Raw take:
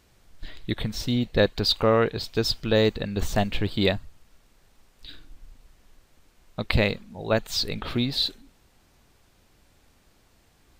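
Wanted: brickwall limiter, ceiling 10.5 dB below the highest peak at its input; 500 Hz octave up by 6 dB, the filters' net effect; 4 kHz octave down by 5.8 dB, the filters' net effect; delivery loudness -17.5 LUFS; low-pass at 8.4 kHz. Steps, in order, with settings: low-pass 8.4 kHz; peaking EQ 500 Hz +7 dB; peaking EQ 4 kHz -6.5 dB; trim +9.5 dB; peak limiter -5 dBFS

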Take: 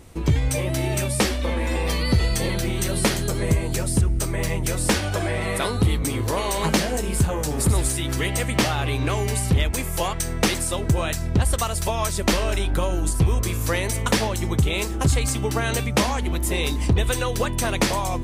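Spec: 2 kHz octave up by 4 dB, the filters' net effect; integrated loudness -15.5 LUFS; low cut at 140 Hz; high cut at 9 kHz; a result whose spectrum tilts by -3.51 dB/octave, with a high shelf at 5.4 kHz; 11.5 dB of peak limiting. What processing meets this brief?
high-pass 140 Hz; low-pass 9 kHz; peaking EQ 2 kHz +4.5 dB; treble shelf 5.4 kHz +3 dB; trim +11 dB; peak limiter -5.5 dBFS

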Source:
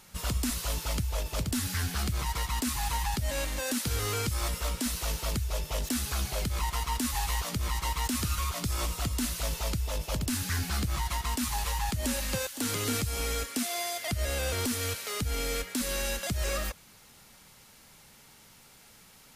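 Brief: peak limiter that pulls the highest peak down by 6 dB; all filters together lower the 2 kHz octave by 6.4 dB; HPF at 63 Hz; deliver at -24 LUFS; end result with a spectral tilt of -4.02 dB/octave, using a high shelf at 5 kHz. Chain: high-pass 63 Hz; peaking EQ 2 kHz -7.5 dB; treble shelf 5 kHz -4 dB; trim +12 dB; peak limiter -14.5 dBFS

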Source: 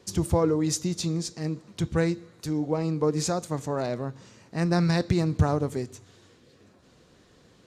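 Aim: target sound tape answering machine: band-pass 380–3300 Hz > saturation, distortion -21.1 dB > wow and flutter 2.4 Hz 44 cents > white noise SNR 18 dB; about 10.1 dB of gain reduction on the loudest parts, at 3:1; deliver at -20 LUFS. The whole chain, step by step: compression 3:1, threshold -32 dBFS; band-pass 380–3300 Hz; saturation -26 dBFS; wow and flutter 2.4 Hz 44 cents; white noise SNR 18 dB; trim +21 dB

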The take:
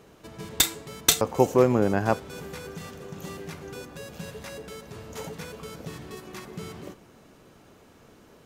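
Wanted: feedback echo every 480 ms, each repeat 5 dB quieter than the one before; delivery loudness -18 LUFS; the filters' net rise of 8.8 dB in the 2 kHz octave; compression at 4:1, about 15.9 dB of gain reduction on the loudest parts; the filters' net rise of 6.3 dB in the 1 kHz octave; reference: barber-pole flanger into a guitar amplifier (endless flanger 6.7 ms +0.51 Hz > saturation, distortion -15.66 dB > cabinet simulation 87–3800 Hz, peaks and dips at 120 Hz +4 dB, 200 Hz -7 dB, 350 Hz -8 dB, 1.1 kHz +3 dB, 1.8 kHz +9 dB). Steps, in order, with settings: peaking EQ 1 kHz +5.5 dB; peaking EQ 2 kHz +3.5 dB; compression 4:1, threshold -33 dBFS; feedback delay 480 ms, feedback 56%, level -5 dB; endless flanger 6.7 ms +0.51 Hz; saturation -30 dBFS; cabinet simulation 87–3800 Hz, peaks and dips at 120 Hz +4 dB, 200 Hz -7 dB, 350 Hz -8 dB, 1.1 kHz +3 dB, 1.8 kHz +9 dB; trim +23.5 dB

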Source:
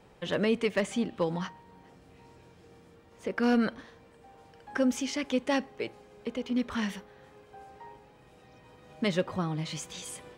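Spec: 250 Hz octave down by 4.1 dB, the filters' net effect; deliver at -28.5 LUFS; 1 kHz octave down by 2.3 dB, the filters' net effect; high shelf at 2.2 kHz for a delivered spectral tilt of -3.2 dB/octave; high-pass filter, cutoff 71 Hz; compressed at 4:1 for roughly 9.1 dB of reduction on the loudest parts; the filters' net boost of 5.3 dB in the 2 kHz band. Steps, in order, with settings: high-pass 71 Hz; peaking EQ 250 Hz -4.5 dB; peaking EQ 1 kHz -5.5 dB; peaking EQ 2 kHz +5.5 dB; treble shelf 2.2 kHz +5 dB; compression 4:1, threshold -34 dBFS; trim +9.5 dB

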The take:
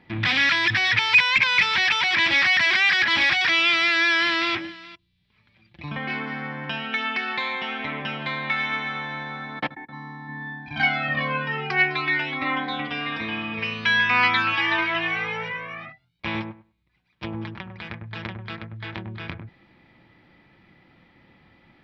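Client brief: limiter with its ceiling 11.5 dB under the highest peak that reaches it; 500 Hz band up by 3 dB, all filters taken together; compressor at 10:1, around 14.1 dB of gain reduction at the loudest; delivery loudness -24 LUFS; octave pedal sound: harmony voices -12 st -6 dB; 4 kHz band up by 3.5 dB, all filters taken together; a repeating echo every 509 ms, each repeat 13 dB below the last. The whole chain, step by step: peaking EQ 500 Hz +4 dB; peaking EQ 4 kHz +4.5 dB; compression 10:1, threshold -24 dBFS; peak limiter -22.5 dBFS; feedback delay 509 ms, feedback 22%, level -13 dB; harmony voices -12 st -6 dB; trim +6 dB

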